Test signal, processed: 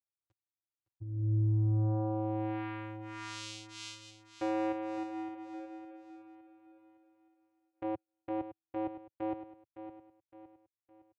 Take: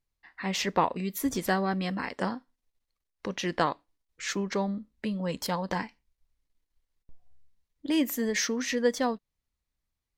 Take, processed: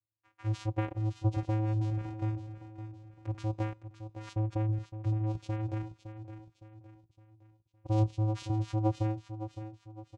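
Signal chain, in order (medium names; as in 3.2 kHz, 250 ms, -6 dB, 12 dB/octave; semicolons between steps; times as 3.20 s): touch-sensitive flanger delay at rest 10.1 ms, full sweep at -30 dBFS; vocoder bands 4, square 108 Hz; feedback delay 562 ms, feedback 41%, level -11 dB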